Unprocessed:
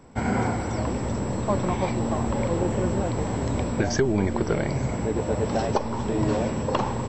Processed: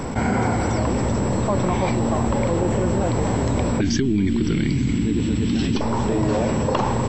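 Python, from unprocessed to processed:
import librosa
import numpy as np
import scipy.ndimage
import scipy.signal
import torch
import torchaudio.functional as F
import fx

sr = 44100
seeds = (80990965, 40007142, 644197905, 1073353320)

y = fx.curve_eq(x, sr, hz=(130.0, 290.0, 600.0, 3200.0, 6000.0), db=(0, 7, -25, 7, -3), at=(3.81, 5.81))
y = fx.env_flatten(y, sr, amount_pct=70)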